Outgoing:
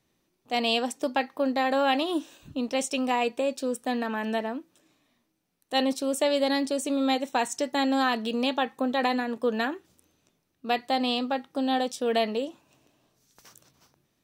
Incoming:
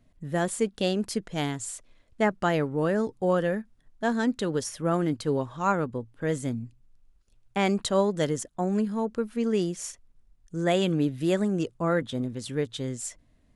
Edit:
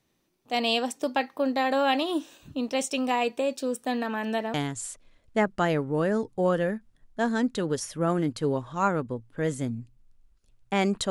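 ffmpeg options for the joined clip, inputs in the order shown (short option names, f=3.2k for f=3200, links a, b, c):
-filter_complex "[0:a]apad=whole_dur=11.1,atrim=end=11.1,atrim=end=4.542[a];[1:a]atrim=start=1.378:end=7.94[b];[a][b]acrossfade=d=0.004:c1=hsin:c2=hsin"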